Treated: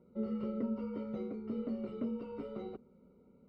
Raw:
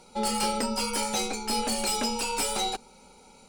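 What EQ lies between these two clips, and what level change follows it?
moving average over 53 samples
high-pass filter 82 Hz 12 dB per octave
high-frequency loss of the air 360 metres
−1.5 dB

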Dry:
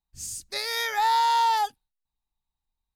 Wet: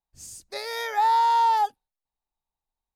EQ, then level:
parametric band 610 Hz +11.5 dB 2.2 octaves
−7.0 dB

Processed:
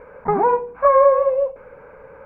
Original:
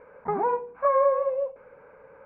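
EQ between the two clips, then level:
low-shelf EQ 76 Hz +11.5 dB
+8.0 dB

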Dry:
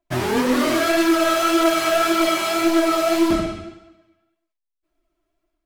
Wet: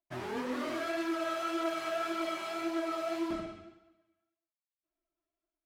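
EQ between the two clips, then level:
low-pass filter 1,400 Hz 6 dB per octave
first difference
spectral tilt −4 dB per octave
+3.5 dB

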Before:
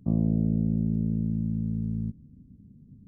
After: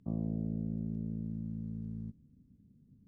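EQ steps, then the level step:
high-frequency loss of the air 52 metres
low-shelf EQ 460 Hz −8 dB
−4.0 dB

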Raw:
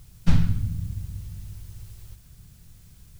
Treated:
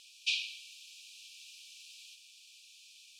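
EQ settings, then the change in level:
linear-phase brick-wall high-pass 2,300 Hz
low-pass filter 4,200 Hz 12 dB per octave
+12.5 dB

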